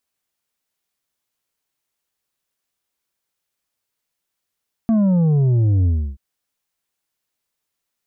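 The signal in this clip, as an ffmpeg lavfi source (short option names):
-f lavfi -i "aevalsrc='0.211*clip((1.28-t)/0.31,0,1)*tanh(2*sin(2*PI*230*1.28/log(65/230)*(exp(log(65/230)*t/1.28)-1)))/tanh(2)':d=1.28:s=44100"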